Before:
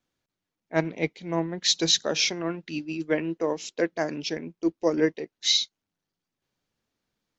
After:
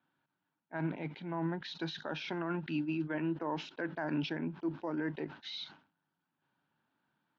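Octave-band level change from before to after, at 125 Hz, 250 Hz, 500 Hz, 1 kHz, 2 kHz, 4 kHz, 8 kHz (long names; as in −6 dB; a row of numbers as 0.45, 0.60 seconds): −3.5 dB, −6.5 dB, −13.0 dB, −5.5 dB, −9.0 dB, −19.0 dB, can't be measured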